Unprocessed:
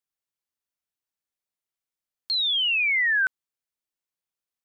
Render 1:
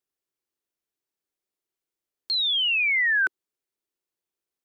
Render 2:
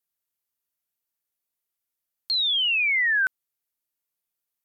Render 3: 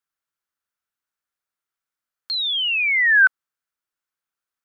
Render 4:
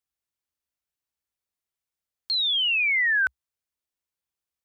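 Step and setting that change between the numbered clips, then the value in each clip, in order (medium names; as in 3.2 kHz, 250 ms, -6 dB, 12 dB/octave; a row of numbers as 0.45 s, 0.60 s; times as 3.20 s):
peaking EQ, frequency: 370 Hz, 14 kHz, 1.4 kHz, 65 Hz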